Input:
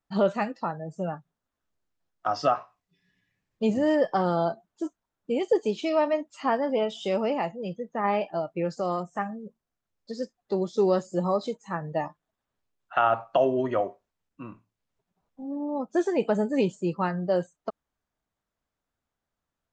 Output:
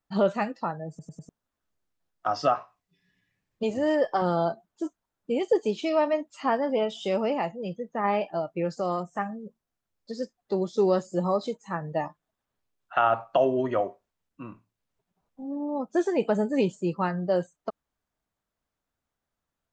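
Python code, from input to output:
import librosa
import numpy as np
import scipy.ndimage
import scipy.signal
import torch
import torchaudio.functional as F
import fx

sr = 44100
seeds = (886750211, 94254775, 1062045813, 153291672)

y = fx.peak_eq(x, sr, hz=180.0, db=-11.5, octaves=0.77, at=(3.63, 4.22))
y = fx.edit(y, sr, fx.stutter_over(start_s=0.89, slice_s=0.1, count=4), tone=tone)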